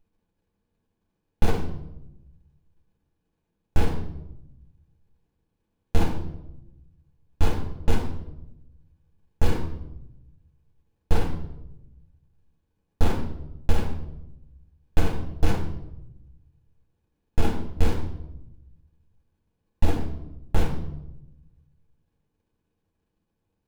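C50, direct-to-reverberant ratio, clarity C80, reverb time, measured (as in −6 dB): 6.5 dB, −2.5 dB, 9.5 dB, 0.90 s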